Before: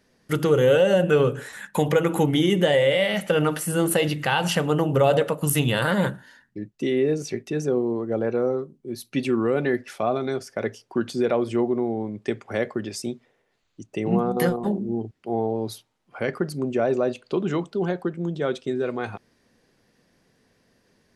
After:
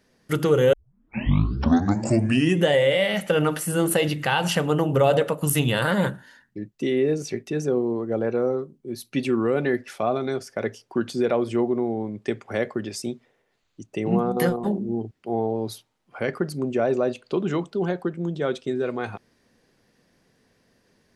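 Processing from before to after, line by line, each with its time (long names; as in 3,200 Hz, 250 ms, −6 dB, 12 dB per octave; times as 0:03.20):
0:00.73: tape start 1.95 s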